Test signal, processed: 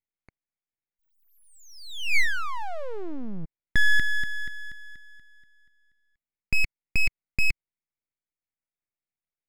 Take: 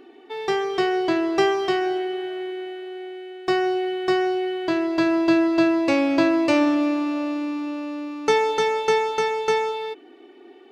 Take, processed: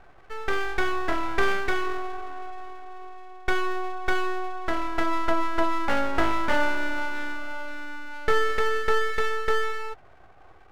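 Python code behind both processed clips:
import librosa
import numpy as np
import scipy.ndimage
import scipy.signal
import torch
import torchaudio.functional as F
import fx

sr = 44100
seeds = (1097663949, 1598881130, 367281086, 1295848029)

y = fx.lowpass_res(x, sr, hz=1100.0, q=5.1)
y = np.abs(y)
y = y * 10.0 ** (-4.5 / 20.0)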